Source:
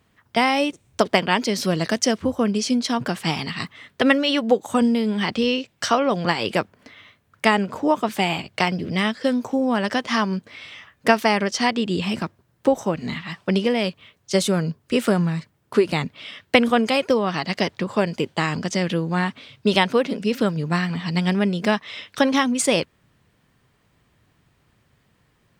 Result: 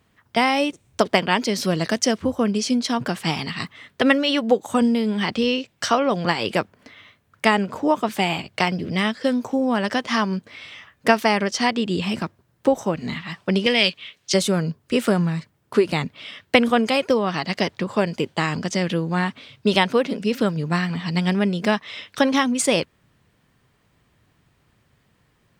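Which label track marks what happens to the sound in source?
13.660000	14.340000	frequency weighting D

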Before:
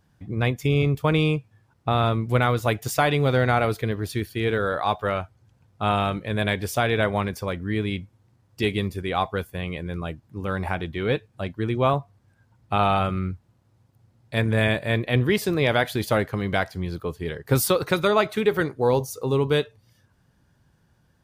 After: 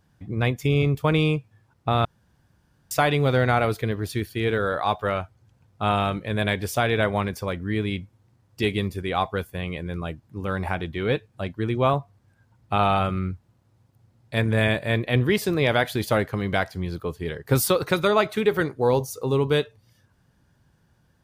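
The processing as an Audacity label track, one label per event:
2.050000	2.910000	room tone

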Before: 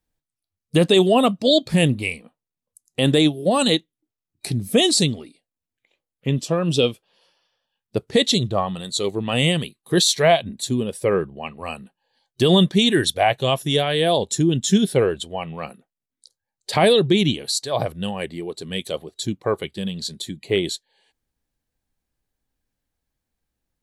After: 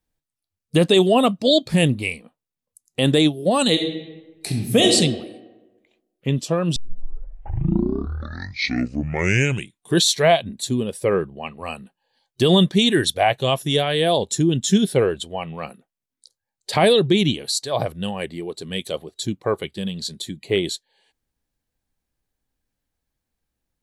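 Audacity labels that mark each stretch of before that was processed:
3.710000	4.930000	reverb throw, RT60 1.2 s, DRR 2 dB
6.760000	6.760000	tape start 3.35 s

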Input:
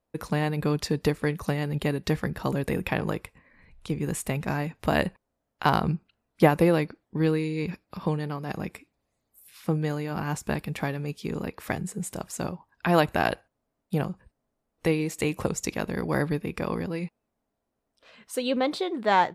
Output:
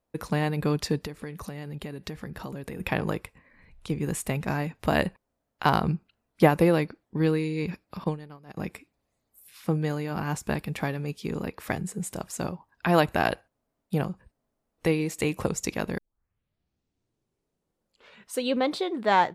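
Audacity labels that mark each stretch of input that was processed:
1.010000	2.800000	compression 4:1, threshold -34 dBFS
8.040000	8.570000	upward expansion 2.5:1, over -34 dBFS
15.980000	15.980000	tape start 2.35 s

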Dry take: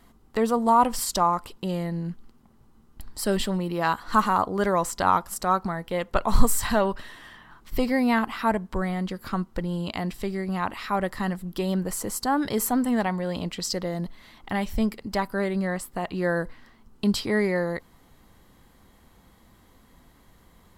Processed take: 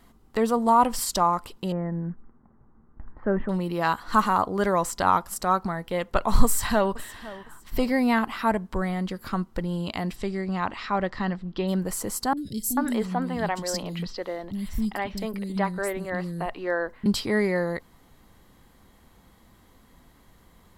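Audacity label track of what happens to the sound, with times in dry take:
1.720000	3.490000	steep low-pass 1.8 kHz
6.440000	6.990000	echo throw 510 ms, feedback 30%, level -17.5 dB
10.150000	11.670000	low-pass 9.6 kHz -> 4.2 kHz 24 dB/octave
12.330000	17.060000	three bands offset in time lows, highs, mids 40/440 ms, splits 280/3900 Hz

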